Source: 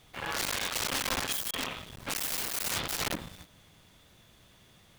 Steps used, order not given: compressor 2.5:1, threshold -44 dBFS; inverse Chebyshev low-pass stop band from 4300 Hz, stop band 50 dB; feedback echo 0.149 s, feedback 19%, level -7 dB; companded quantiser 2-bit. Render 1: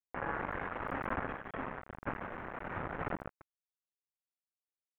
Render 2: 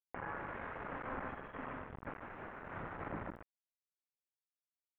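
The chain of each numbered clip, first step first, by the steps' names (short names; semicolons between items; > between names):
compressor > feedback echo > companded quantiser > inverse Chebyshev low-pass; feedback echo > companded quantiser > compressor > inverse Chebyshev low-pass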